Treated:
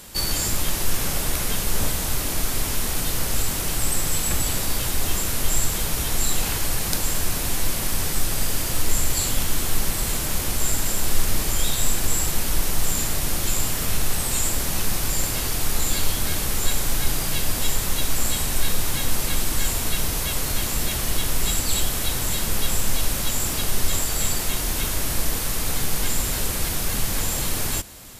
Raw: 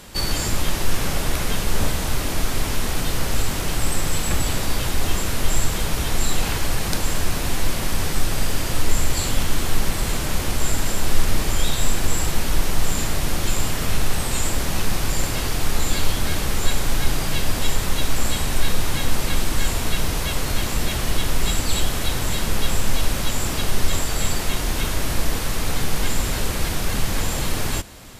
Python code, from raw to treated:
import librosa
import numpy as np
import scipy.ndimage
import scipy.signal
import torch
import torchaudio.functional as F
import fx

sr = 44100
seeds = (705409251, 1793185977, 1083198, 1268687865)

y = fx.high_shelf(x, sr, hz=6600.0, db=11.5)
y = y * 10.0 ** (-3.5 / 20.0)